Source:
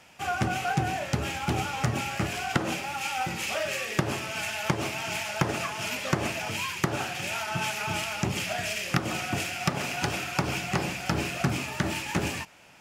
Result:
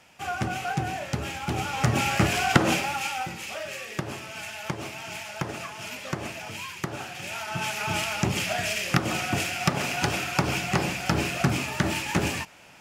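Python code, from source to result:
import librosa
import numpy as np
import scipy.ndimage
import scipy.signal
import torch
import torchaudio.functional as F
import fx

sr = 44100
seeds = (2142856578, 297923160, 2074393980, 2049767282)

y = fx.gain(x, sr, db=fx.line((1.5, -1.5), (2.08, 7.0), (2.77, 7.0), (3.4, -5.0), (7.07, -5.0), (7.99, 3.0)))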